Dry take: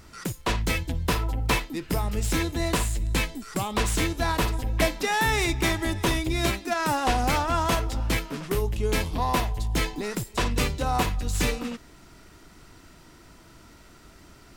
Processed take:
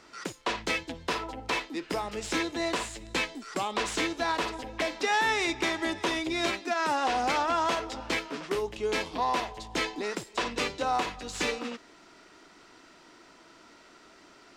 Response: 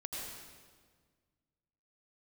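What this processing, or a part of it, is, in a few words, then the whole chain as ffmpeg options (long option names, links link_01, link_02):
DJ mixer with the lows and highs turned down: -filter_complex "[0:a]acrossover=split=250 7300:gain=0.0794 1 0.0891[link_01][link_02][link_03];[link_01][link_02][link_03]amix=inputs=3:normalize=0,alimiter=limit=-17.5dB:level=0:latency=1:release=93"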